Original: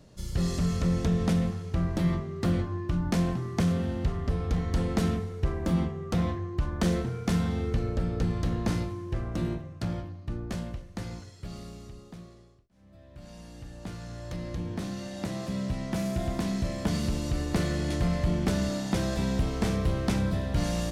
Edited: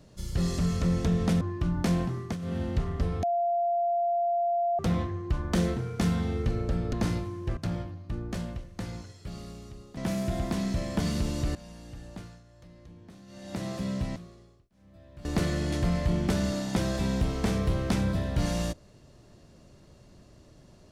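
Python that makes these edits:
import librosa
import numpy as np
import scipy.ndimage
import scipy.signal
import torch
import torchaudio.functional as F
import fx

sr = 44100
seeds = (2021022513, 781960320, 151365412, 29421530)

y = fx.edit(x, sr, fx.cut(start_s=1.41, length_s=1.28),
    fx.fade_down_up(start_s=3.4, length_s=0.54, db=-12.5, fade_s=0.25, curve='qsin'),
    fx.bleep(start_s=4.51, length_s=1.56, hz=692.0, db=-23.5),
    fx.cut(start_s=8.21, length_s=0.37),
    fx.cut(start_s=9.22, length_s=0.53),
    fx.swap(start_s=12.15, length_s=1.09, other_s=15.85, other_length_s=1.58),
    fx.fade_down_up(start_s=13.74, length_s=1.59, db=-16.0, fade_s=0.38), tone=tone)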